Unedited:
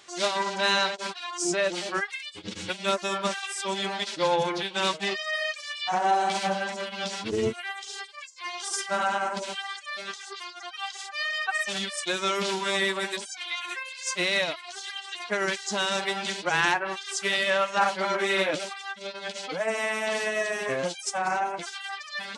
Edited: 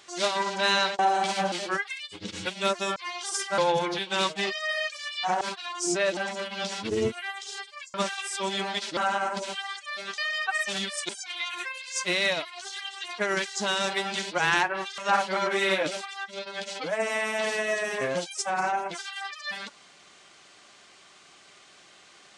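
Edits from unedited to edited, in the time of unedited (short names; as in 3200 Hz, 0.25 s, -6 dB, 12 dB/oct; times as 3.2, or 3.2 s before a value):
0.99–1.75 swap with 6.05–6.58
3.19–4.22 swap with 8.35–8.97
10.18–11.18 cut
12.09–13.2 cut
17.09–17.66 cut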